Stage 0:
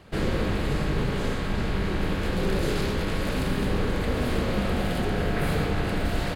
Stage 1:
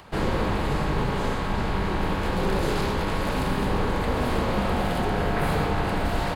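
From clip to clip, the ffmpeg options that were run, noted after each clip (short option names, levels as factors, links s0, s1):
-filter_complex "[0:a]equalizer=f=920:t=o:w=0.77:g=9.5,acrossover=split=930[s0][s1];[s1]acompressor=mode=upward:threshold=0.00398:ratio=2.5[s2];[s0][s2]amix=inputs=2:normalize=0"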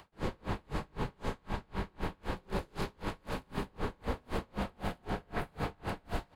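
-af "aeval=exprs='val(0)*pow(10,-35*(0.5-0.5*cos(2*PI*3.9*n/s))/20)':c=same,volume=0.447"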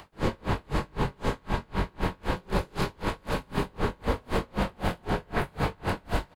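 -filter_complex "[0:a]asplit=2[s0][s1];[s1]adelay=22,volume=0.316[s2];[s0][s2]amix=inputs=2:normalize=0,volume=2.51"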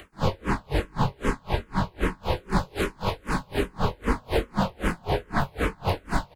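-filter_complex "[0:a]asplit=2[s0][s1];[s1]afreqshift=-2.5[s2];[s0][s2]amix=inputs=2:normalize=1,volume=2"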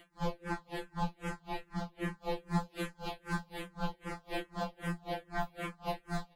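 -af "afftfilt=real='re*2.83*eq(mod(b,8),0)':imag='im*2.83*eq(mod(b,8),0)':win_size=2048:overlap=0.75,volume=0.398"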